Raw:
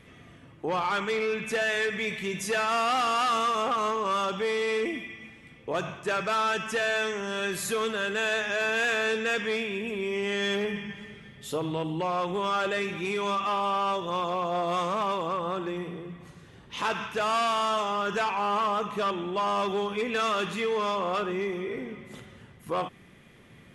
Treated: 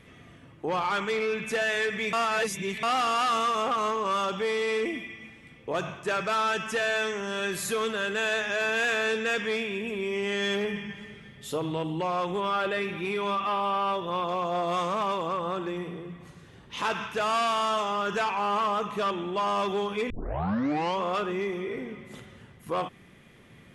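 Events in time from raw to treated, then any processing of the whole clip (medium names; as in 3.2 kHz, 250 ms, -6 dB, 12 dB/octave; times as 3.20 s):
2.13–2.83 s: reverse
12.40–14.29 s: peaking EQ 6.8 kHz -11.5 dB 0.69 oct
20.10 s: tape start 0.91 s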